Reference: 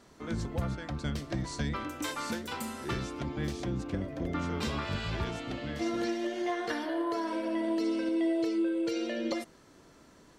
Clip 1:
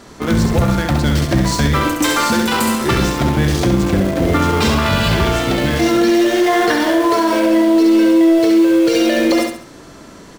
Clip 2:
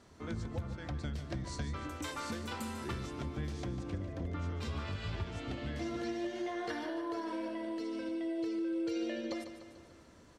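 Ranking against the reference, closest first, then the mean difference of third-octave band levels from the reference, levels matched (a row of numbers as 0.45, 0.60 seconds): 2, 1; 2.5, 4.0 decibels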